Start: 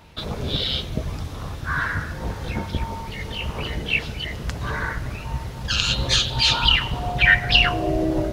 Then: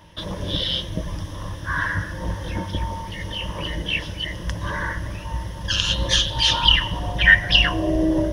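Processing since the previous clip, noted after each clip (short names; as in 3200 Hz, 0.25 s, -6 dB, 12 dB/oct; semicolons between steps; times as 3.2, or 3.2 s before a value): ripple EQ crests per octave 1.2, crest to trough 11 dB; gain -1.5 dB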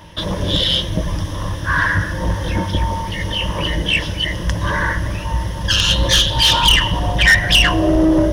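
soft clip -15 dBFS, distortion -10 dB; gain +8.5 dB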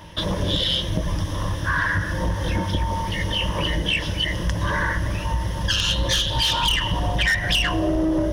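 compressor, threshold -17 dBFS, peak gain reduction 8.5 dB; gain -1.5 dB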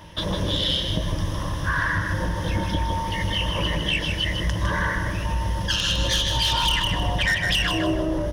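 feedback echo 0.156 s, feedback 29%, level -6 dB; gain -2 dB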